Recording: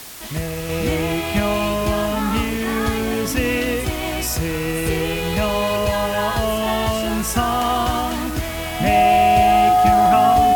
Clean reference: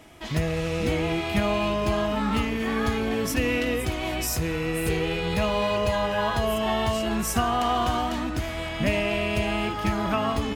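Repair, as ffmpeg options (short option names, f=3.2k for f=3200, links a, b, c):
-af "bandreject=f=730:w=30,afwtdn=0.016,asetnsamples=n=441:p=0,asendcmd='0.69 volume volume -4.5dB',volume=0dB"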